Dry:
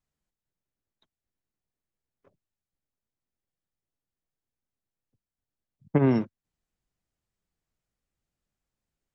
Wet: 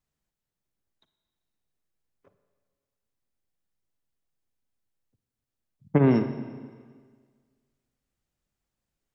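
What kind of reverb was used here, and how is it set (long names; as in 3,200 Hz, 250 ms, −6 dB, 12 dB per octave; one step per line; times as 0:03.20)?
four-comb reverb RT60 1.7 s, DRR 9 dB
level +1.5 dB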